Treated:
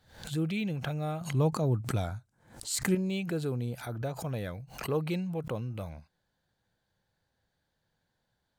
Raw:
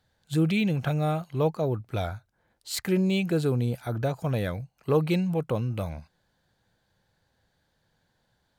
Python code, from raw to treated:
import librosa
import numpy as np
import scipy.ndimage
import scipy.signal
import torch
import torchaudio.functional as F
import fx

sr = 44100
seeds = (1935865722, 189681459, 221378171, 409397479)

y = fx.graphic_eq(x, sr, hz=(125, 250, 1000, 8000), db=(9, 6, 3, 11), at=(1.21, 2.95))
y = fx.pre_swell(y, sr, db_per_s=110.0)
y = y * librosa.db_to_amplitude(-7.5)